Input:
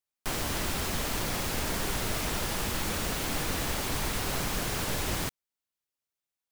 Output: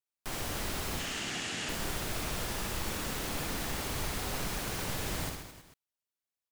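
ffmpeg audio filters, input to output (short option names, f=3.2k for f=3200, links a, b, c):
-filter_complex "[0:a]asettb=1/sr,asplit=3[a][b][c];[a]atrim=end=0.994[d];[b]atrim=start=0.99:end=1.69,asetpts=PTS-STARTPTS,afade=t=in:d=0.004:c=qsin,afade=t=out:st=0.696:d=0.004:c=qsin,highpass=160,equalizer=f=530:t=q:w=4:g=-8,equalizer=f=1k:t=q:w=4:g=-7,equalizer=f=1.8k:t=q:w=4:g=5,equalizer=f=2.9k:t=q:w=4:g=9,equalizer=f=6.9k:t=q:w=4:g=4,lowpass=f=8.5k:w=0.5412,lowpass=f=8.5k:w=1.3066[e];[c]atrim=start=1.686[f];[d][e]acrossfade=d=0.004:c1=hsin:c2=qsin[g];[g][f]acrossfade=d=0.004:c1=qsin:c2=hsin,aecho=1:1:60|132|218.4|322.1|446.5:0.631|0.398|0.251|0.158|0.1,volume=-6.5dB"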